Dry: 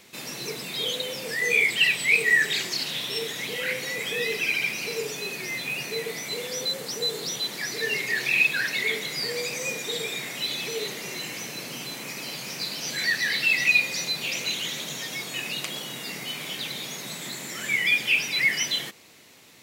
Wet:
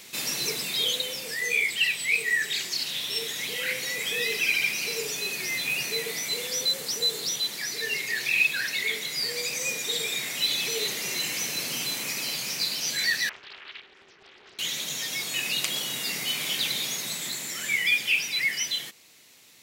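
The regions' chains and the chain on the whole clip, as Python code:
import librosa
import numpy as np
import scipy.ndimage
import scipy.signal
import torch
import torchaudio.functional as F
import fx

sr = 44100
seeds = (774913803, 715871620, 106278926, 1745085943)

y = fx.chain(x, sr, fx.double_bandpass(hz=770.0, octaves=1.9),
    fx.air_absorb(metres=300.0),
    fx.doppler_dist(depth_ms=0.63), at=(13.29, 14.59))
y = fx.high_shelf(y, sr, hz=2100.0, db=9.5)
y = fx.rider(y, sr, range_db=10, speed_s=2.0)
y = y * librosa.db_to_amplitude(-6.5)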